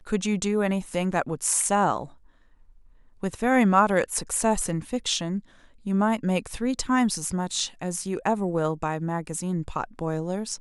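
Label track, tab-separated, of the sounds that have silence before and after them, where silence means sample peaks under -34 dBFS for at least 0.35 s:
3.230000	5.400000	sound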